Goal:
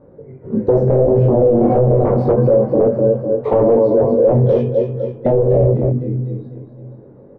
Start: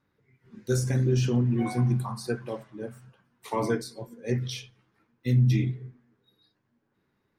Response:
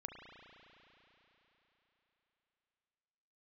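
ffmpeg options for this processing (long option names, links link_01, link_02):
-af "acompressor=threshold=-33dB:ratio=8,bandreject=frequency=97.53:width_type=h:width=4,bandreject=frequency=195.06:width_type=h:width=4,bandreject=frequency=292.59:width_type=h:width=4,bandreject=frequency=390.12:width_type=h:width=4,bandreject=frequency=487.65:width_type=h:width=4,bandreject=frequency=585.18:width_type=h:width=4,bandreject=frequency=682.71:width_type=h:width=4,bandreject=frequency=780.24:width_type=h:width=4,bandreject=frequency=877.77:width_type=h:width=4,bandreject=frequency=975.3:width_type=h:width=4,bandreject=frequency=1072.83:width_type=h:width=4,bandreject=frequency=1170.36:width_type=h:width=4,bandreject=frequency=1267.89:width_type=h:width=4,bandreject=frequency=1365.42:width_type=h:width=4,bandreject=frequency=1462.95:width_type=h:width=4,bandreject=frequency=1560.48:width_type=h:width=4,bandreject=frequency=1658.01:width_type=h:width=4,bandreject=frequency=1755.54:width_type=h:width=4,bandreject=frequency=1853.07:width_type=h:width=4,bandreject=frequency=1950.6:width_type=h:width=4,bandreject=frequency=2048.13:width_type=h:width=4,bandreject=frequency=2145.66:width_type=h:width=4,bandreject=frequency=2243.19:width_type=h:width=4,bandreject=frequency=2340.72:width_type=h:width=4,bandreject=frequency=2438.25:width_type=h:width=4,bandreject=frequency=2535.78:width_type=h:width=4,bandreject=frequency=2633.31:width_type=h:width=4,bandreject=frequency=2730.84:width_type=h:width=4,bandreject=frequency=2828.37:width_type=h:width=4,acontrast=82,aecho=1:1:252|504|756|1008|1260|1512:0.335|0.171|0.0871|0.0444|0.0227|0.0116,aeval=exprs='0.0447*(abs(mod(val(0)/0.0447+3,4)-2)-1)':channel_layout=same,lowpass=frequency=540:width_type=q:width=4.9,flanger=delay=17.5:depth=3.3:speed=1.6,alimiter=level_in=27dB:limit=-1dB:release=50:level=0:latency=1,volume=-4dB"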